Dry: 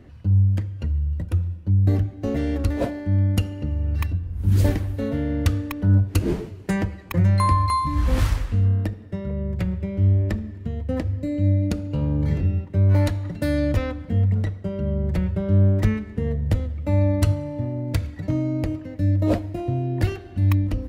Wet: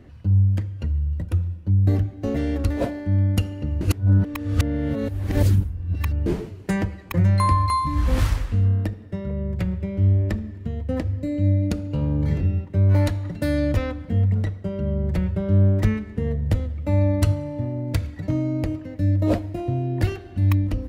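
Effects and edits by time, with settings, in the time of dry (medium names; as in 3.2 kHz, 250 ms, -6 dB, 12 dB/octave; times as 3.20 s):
3.81–6.26 s: reverse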